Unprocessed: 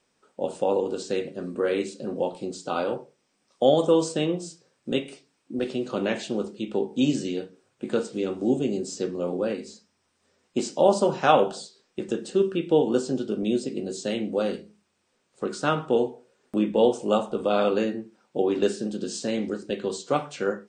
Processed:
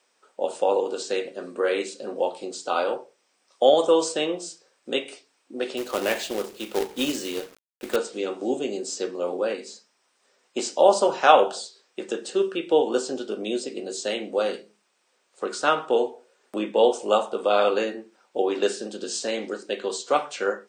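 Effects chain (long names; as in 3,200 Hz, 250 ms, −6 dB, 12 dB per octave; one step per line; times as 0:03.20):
high-pass filter 480 Hz 12 dB per octave
0:05.77–0:07.96: log-companded quantiser 4 bits
level +4.5 dB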